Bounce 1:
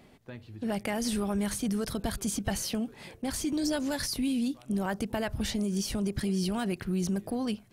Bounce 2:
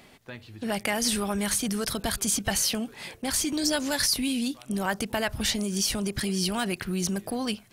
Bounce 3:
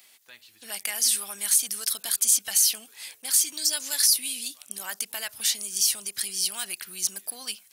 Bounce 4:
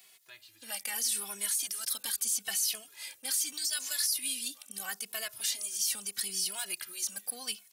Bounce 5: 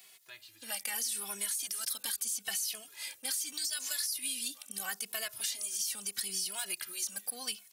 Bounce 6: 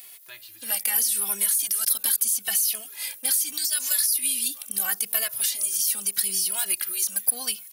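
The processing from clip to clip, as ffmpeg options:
-af "tiltshelf=f=800:g=-5,volume=1.68"
-af "aderivative,acontrast=54"
-filter_complex "[0:a]alimiter=limit=0.141:level=0:latency=1:release=42,asplit=2[s0][s1];[s1]adelay=2.3,afreqshift=-0.79[s2];[s0][s2]amix=inputs=2:normalize=1"
-af "acompressor=threshold=0.0224:ratio=6,volume=1.19"
-af "aexciter=amount=4.2:drive=2.4:freq=10000,volume=2.11"

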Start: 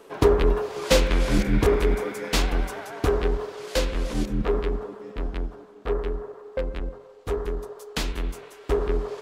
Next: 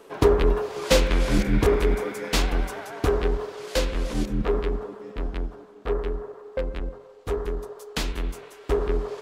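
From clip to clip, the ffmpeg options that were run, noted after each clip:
-af anull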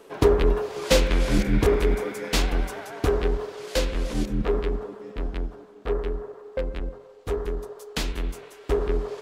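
-af "equalizer=f=1100:w=1.5:g=-2"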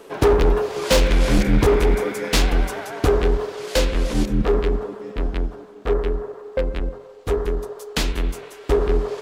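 -af "volume=7.08,asoftclip=hard,volume=0.141,volume=2"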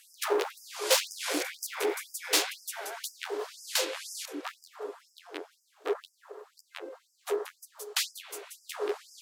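-af "aemphasis=mode=production:type=cd,afftfilt=real='re*gte(b*sr/1024,280*pow(4900/280,0.5+0.5*sin(2*PI*2*pts/sr)))':imag='im*gte(b*sr/1024,280*pow(4900/280,0.5+0.5*sin(2*PI*2*pts/sr)))':win_size=1024:overlap=0.75,volume=0.447"

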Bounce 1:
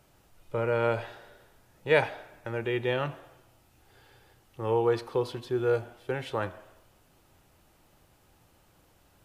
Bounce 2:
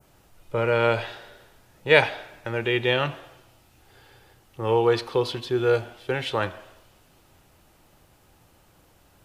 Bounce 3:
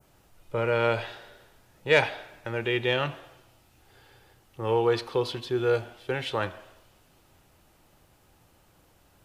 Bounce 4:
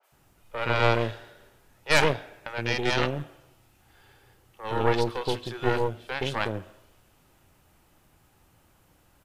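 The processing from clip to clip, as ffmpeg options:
-af "adynamicequalizer=threshold=0.00316:dfrequency=3500:dqfactor=0.77:tfrequency=3500:tqfactor=0.77:attack=5:release=100:ratio=0.375:range=4:mode=boostabove:tftype=bell,volume=1.68"
-af "asoftclip=type=tanh:threshold=0.562,volume=0.708"
-filter_complex "[0:a]acrossover=split=530|4400[s0][s1][s2];[s2]adelay=30[s3];[s0]adelay=120[s4];[s4][s1][s3]amix=inputs=3:normalize=0,aeval=exprs='0.422*(cos(1*acos(clip(val(0)/0.422,-1,1)))-cos(1*PI/2))+0.119*(cos(6*acos(clip(val(0)/0.422,-1,1)))-cos(6*PI/2))':c=same"

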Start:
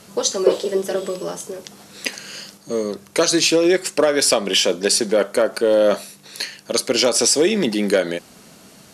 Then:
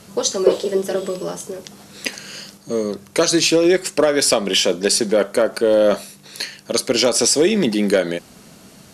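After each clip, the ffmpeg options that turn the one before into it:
-af "lowshelf=f=180:g=6.5"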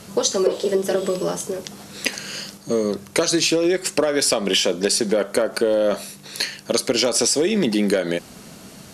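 -af "acompressor=threshold=0.126:ratio=10,volume=1.41"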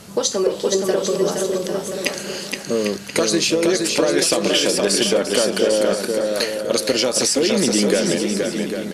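-af "aecho=1:1:470|799|1029|1191|1303:0.631|0.398|0.251|0.158|0.1"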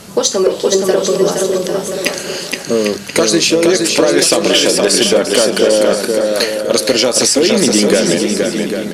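-af "bandreject=f=50:t=h:w=6,bandreject=f=100:t=h:w=6,bandreject=f=150:t=h:w=6,bandreject=f=200:t=h:w=6,volume=2.66,asoftclip=hard,volume=0.376,volume=2.11"

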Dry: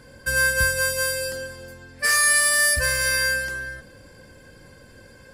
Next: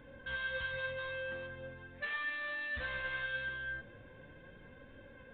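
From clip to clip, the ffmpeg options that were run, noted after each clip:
-af "alimiter=limit=0.178:level=0:latency=1,aresample=8000,asoftclip=type=tanh:threshold=0.0316,aresample=44100,flanger=delay=3.5:depth=5.4:regen=57:speed=0.4:shape=sinusoidal,volume=0.75"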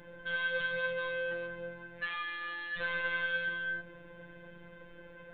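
-af "afftfilt=real='hypot(re,im)*cos(PI*b)':imag='0':win_size=1024:overlap=0.75,volume=2.11"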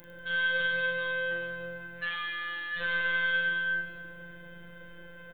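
-filter_complex "[0:a]aemphasis=mode=production:type=50fm,asplit=2[s0][s1];[s1]aecho=0:1:40|100|190|325|527.5:0.631|0.398|0.251|0.158|0.1[s2];[s0][s2]amix=inputs=2:normalize=0"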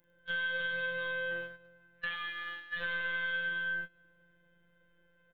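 -af "agate=range=0.0631:threshold=0.02:ratio=16:detection=peak,acompressor=threshold=0.01:ratio=2.5,volume=1.5"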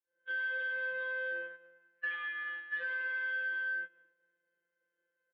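-af "agate=range=0.0224:threshold=0.00141:ratio=3:detection=peak,asoftclip=type=tanh:threshold=0.0282,highpass=f=280:w=0.5412,highpass=f=280:w=1.3066,equalizer=f=430:t=q:w=4:g=9,equalizer=f=680:t=q:w=4:g=-4,equalizer=f=1700:t=q:w=4:g=6,lowpass=f=3000:w=0.5412,lowpass=f=3000:w=1.3066,volume=0.75"

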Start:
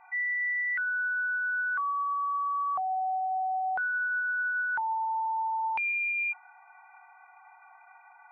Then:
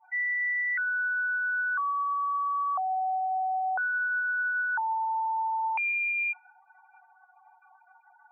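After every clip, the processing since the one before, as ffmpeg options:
-af "afftdn=nr=35:nf=-44,acontrast=55,volume=0.562"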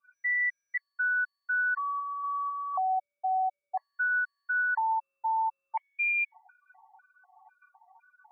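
-af "afftfilt=real='re*gt(sin(2*PI*2*pts/sr)*(1-2*mod(floor(b*sr/1024/570),2)),0)':imag='im*gt(sin(2*PI*2*pts/sr)*(1-2*mod(floor(b*sr/1024/570),2)),0)':win_size=1024:overlap=0.75,volume=1.19"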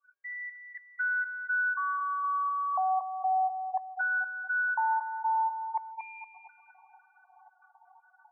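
-af "asuperpass=centerf=710:order=8:qfactor=0.57,aecho=1:1:233|466|699|932|1165:0.355|0.153|0.0656|0.0282|0.0121"

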